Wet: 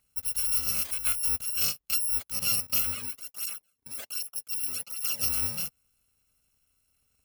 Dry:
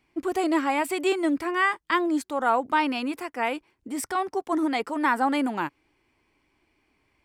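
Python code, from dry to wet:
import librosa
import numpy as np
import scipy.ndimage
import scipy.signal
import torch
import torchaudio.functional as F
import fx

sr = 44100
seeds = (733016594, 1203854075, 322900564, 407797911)

y = fx.bit_reversed(x, sr, seeds[0], block=128)
y = fx.dynamic_eq(y, sr, hz=6900.0, q=0.91, threshold_db=-38.0, ratio=4.0, max_db=-4)
y = fx.flanger_cancel(y, sr, hz=1.3, depth_ms=1.7, at=(2.94, 5.22), fade=0.02)
y = y * 10.0 ** (-3.0 / 20.0)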